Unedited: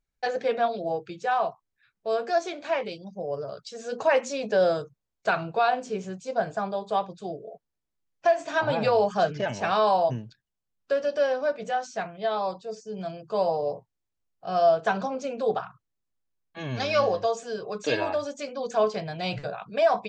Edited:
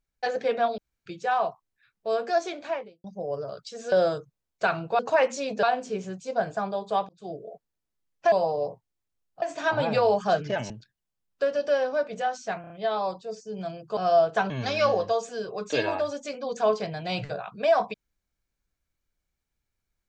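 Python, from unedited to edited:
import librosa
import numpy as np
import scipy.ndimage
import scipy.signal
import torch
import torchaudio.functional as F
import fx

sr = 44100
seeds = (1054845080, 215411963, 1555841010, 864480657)

y = fx.studio_fade_out(x, sr, start_s=2.56, length_s=0.48)
y = fx.edit(y, sr, fx.room_tone_fill(start_s=0.78, length_s=0.28),
    fx.move(start_s=3.92, length_s=0.64, to_s=5.63),
    fx.fade_in_span(start_s=7.09, length_s=0.27),
    fx.cut(start_s=9.6, length_s=0.59),
    fx.stutter(start_s=12.1, slice_s=0.03, count=4),
    fx.move(start_s=13.37, length_s=1.1, to_s=8.32),
    fx.cut(start_s=15.0, length_s=1.64), tone=tone)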